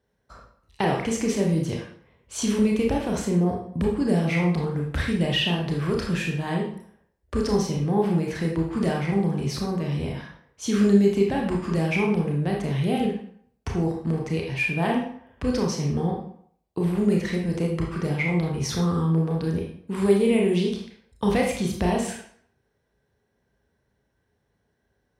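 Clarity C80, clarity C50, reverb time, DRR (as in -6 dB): 8.0 dB, 4.0 dB, 0.60 s, -1.0 dB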